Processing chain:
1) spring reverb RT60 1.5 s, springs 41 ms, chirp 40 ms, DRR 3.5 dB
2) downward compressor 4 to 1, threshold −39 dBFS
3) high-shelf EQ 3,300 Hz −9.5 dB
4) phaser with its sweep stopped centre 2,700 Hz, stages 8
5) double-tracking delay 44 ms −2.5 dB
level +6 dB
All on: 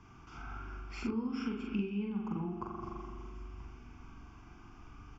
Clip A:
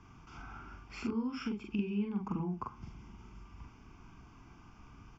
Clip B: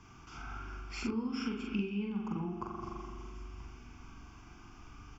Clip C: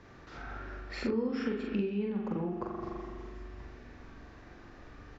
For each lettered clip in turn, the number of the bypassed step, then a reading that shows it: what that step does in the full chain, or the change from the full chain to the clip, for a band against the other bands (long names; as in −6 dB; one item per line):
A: 1, change in momentary loudness spread +3 LU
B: 3, 4 kHz band +5.0 dB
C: 4, 500 Hz band +7.0 dB